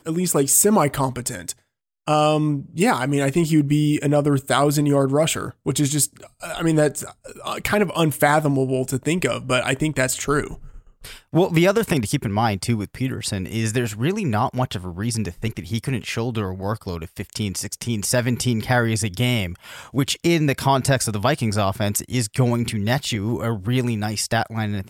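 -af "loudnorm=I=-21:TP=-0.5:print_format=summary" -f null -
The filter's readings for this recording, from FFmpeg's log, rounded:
Input Integrated:    -21.4 LUFS
Input True Peak:      -3.0 dBTP
Input LRA:             4.7 LU
Input Threshold:     -31.6 LUFS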